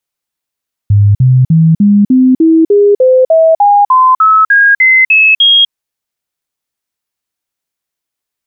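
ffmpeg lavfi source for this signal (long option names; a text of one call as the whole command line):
ffmpeg -f lavfi -i "aevalsrc='0.708*clip(min(mod(t,0.3),0.25-mod(t,0.3))/0.005,0,1)*sin(2*PI*102*pow(2,floor(t/0.3)/3)*mod(t,0.3))':duration=4.8:sample_rate=44100" out.wav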